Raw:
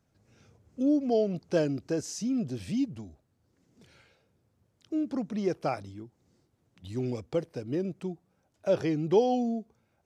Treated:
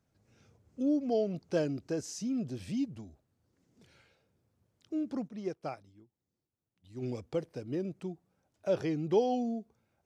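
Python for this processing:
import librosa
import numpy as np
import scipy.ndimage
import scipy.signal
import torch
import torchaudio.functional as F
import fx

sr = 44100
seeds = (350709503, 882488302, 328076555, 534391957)

y = fx.upward_expand(x, sr, threshold_db=-50.0, expansion=1.5, at=(5.27, 7.01), fade=0.02)
y = F.gain(torch.from_numpy(y), -4.0).numpy()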